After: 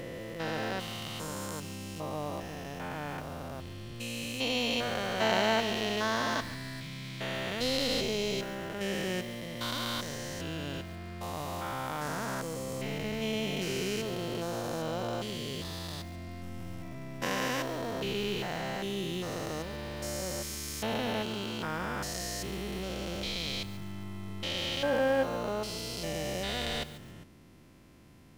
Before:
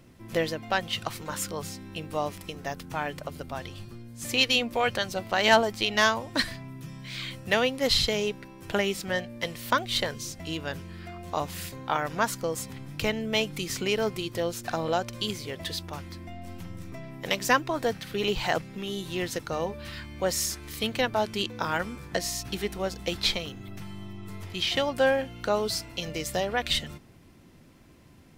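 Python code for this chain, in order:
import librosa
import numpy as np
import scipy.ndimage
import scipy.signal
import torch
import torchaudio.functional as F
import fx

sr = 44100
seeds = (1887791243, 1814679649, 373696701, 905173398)

y = fx.spec_steps(x, sr, hold_ms=400)
y = fx.echo_crushed(y, sr, ms=141, feedback_pct=35, bits=7, wet_db=-13.5)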